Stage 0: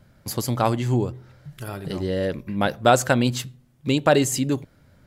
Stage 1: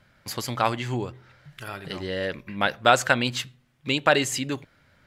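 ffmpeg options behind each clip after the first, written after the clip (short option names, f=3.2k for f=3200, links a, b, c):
-af "equalizer=f=2.2k:w=0.41:g=13.5,volume=-8.5dB"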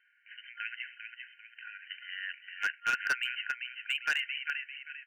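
-filter_complex "[0:a]asplit=6[a][b][c][d][e][f];[b]adelay=396,afreqshift=-94,volume=-6dB[g];[c]adelay=792,afreqshift=-188,volume=-14.2dB[h];[d]adelay=1188,afreqshift=-282,volume=-22.4dB[i];[e]adelay=1584,afreqshift=-376,volume=-30.5dB[j];[f]adelay=1980,afreqshift=-470,volume=-38.7dB[k];[a][g][h][i][j][k]amix=inputs=6:normalize=0,afftfilt=real='re*between(b*sr/4096,1400,3100)':imag='im*between(b*sr/4096,1400,3100)':win_size=4096:overlap=0.75,asoftclip=type=hard:threshold=-19dB,volume=-4dB"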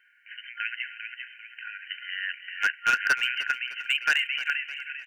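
-af "aecho=1:1:305|610|915|1220:0.168|0.0705|0.0296|0.0124,volume=7dB"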